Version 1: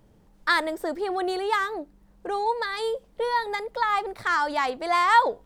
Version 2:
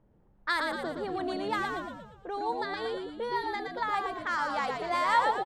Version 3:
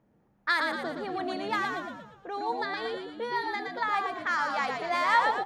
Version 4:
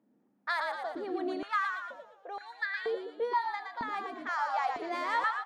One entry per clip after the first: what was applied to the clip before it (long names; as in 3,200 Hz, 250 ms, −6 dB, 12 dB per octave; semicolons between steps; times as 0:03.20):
low-pass that shuts in the quiet parts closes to 1,600 Hz, open at −19.5 dBFS; echo with shifted repeats 117 ms, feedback 50%, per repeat −76 Hz, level −4 dB; level −7.5 dB
convolution reverb RT60 1.0 s, pre-delay 3 ms, DRR 15.5 dB
high-pass on a step sequencer 2.1 Hz 250–1,700 Hz; level −8.5 dB